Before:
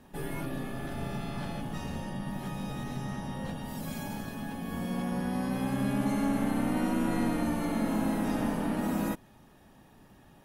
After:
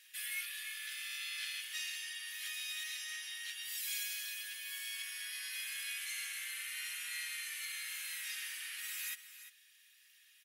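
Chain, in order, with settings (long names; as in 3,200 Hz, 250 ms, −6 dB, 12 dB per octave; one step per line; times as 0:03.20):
Butterworth high-pass 2,000 Hz 36 dB per octave
speech leveller 2 s
single-tap delay 346 ms −13 dB
level +6.5 dB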